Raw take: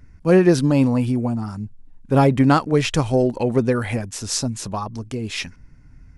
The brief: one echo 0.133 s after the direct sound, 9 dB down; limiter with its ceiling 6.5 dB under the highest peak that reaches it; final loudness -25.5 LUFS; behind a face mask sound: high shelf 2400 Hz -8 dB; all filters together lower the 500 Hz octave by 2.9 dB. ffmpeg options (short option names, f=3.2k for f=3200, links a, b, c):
-af "equalizer=f=500:t=o:g=-3.5,alimiter=limit=-10.5dB:level=0:latency=1,highshelf=f=2.4k:g=-8,aecho=1:1:133:0.355,volume=-2.5dB"